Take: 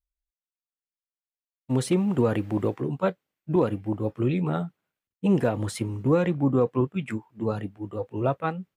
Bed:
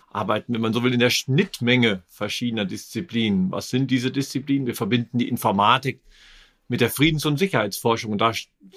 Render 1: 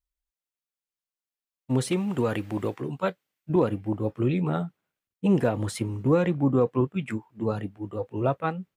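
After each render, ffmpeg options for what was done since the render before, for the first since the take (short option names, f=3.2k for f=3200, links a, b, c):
-filter_complex "[0:a]asettb=1/sr,asplit=3[a][b][c];[a]atrim=end=1.904[d];[b]atrim=start=1.9:end=3.5,asetpts=PTS-STARTPTS,afade=t=in:d=0.004:c=qsin,afade=t=out:st=1.596:d=0.004:c=qsin,tiltshelf=f=1.2k:g=-4[e];[c]atrim=start=3.496[f];[d][e]acrossfade=d=0.004:c1=hsin:c2=qsin[g];[g][f]acrossfade=d=0.004:c1=qsin:c2=hsin"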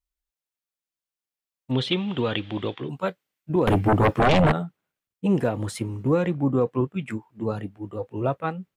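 -filter_complex "[0:a]asettb=1/sr,asplit=3[a][b][c];[a]atrim=end=1.714[d];[b]atrim=start=1.71:end=2.89,asetpts=PTS-STARTPTS,afade=t=in:d=0.004:c=qsin,afade=t=out:st=1.176:d=0.004:c=qsin,lowpass=f=3.4k:t=q:w=7.8[e];[c]atrim=start=2.886[f];[d][e]acrossfade=d=0.004:c1=hsin:c2=qsin[g];[g][f]acrossfade=d=0.004:c1=qsin:c2=hsin,asettb=1/sr,asplit=3[h][i][j];[h]atrim=end=3.674[k];[i]atrim=start=3.67:end=4.52,asetpts=PTS-STARTPTS,afade=t=in:d=0.004:c=qsin,afade=t=out:st=0.846:d=0.004:c=qsin,aeval=exprs='0.2*sin(PI/2*4.47*val(0)/0.2)':c=same[l];[j]atrim=start=4.516[m];[k][l]acrossfade=d=0.004:c1=hsin:c2=qsin[n];[n][m]acrossfade=d=0.004:c1=qsin:c2=hsin"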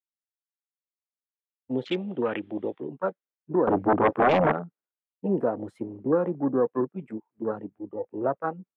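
-filter_complex "[0:a]afwtdn=0.0282,acrossover=split=210 2300:gain=0.1 1 0.2[a][b][c];[a][b][c]amix=inputs=3:normalize=0"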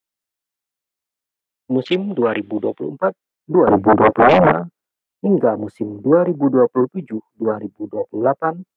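-af "volume=10dB,alimiter=limit=-1dB:level=0:latency=1"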